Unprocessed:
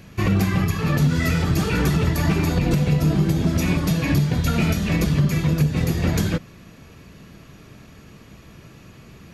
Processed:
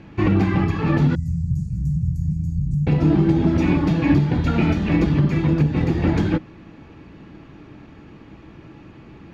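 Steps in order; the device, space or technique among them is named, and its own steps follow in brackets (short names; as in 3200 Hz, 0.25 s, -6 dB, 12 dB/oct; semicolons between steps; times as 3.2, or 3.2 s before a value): 1.15–2.87 elliptic band-stop 150–7300 Hz, stop band 40 dB; inside a cardboard box (LPF 2900 Hz 12 dB/oct; small resonant body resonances 310/840 Hz, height 11 dB, ringing for 50 ms)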